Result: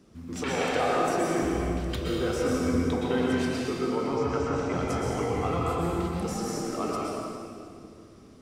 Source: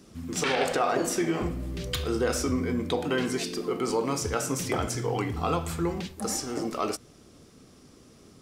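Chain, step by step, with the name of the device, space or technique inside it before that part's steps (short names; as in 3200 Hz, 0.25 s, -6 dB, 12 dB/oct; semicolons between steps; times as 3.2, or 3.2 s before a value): 3.86–4.75 air absorption 140 m; swimming-pool hall (reverb RT60 2.4 s, pre-delay 0.111 s, DRR -4 dB; high shelf 3400 Hz -8 dB); gain -4 dB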